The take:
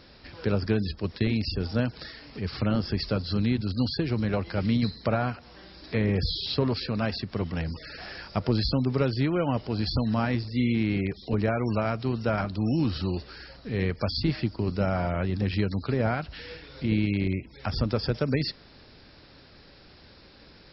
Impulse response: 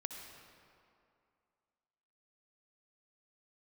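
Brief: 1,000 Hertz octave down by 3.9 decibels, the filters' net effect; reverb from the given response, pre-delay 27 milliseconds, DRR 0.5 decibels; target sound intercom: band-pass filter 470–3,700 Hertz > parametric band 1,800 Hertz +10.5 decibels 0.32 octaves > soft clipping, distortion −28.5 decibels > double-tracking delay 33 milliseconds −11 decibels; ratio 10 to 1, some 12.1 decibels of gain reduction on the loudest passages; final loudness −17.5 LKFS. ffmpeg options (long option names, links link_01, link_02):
-filter_complex "[0:a]equalizer=frequency=1000:width_type=o:gain=-6.5,acompressor=threshold=-33dB:ratio=10,asplit=2[link_01][link_02];[1:a]atrim=start_sample=2205,adelay=27[link_03];[link_02][link_03]afir=irnorm=-1:irlink=0,volume=1dB[link_04];[link_01][link_04]amix=inputs=2:normalize=0,highpass=470,lowpass=3700,equalizer=frequency=1800:width_type=o:width=0.32:gain=10.5,asoftclip=threshold=-24dB,asplit=2[link_05][link_06];[link_06]adelay=33,volume=-11dB[link_07];[link_05][link_07]amix=inputs=2:normalize=0,volume=23.5dB"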